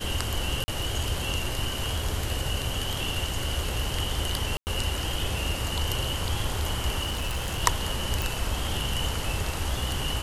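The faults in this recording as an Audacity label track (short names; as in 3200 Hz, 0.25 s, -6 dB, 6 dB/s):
0.640000	0.680000	gap 40 ms
4.570000	4.670000	gap 99 ms
7.020000	7.630000	clipped -25 dBFS
8.220000	8.220000	pop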